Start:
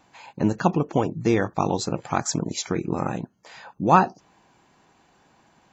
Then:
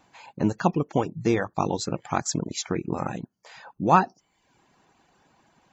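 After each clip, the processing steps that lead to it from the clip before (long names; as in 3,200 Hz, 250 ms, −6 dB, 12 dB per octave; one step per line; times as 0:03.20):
reverb reduction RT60 0.61 s
level −1.5 dB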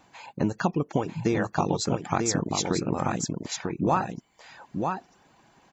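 downward compressor 6 to 1, threshold −23 dBFS, peak gain reduction 11 dB
on a send: single-tap delay 944 ms −4.5 dB
on the sum: level +2.5 dB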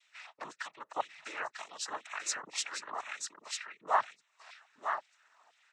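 auto-filter high-pass saw down 2 Hz 850–2,700 Hz
cochlear-implant simulation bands 12
level −7 dB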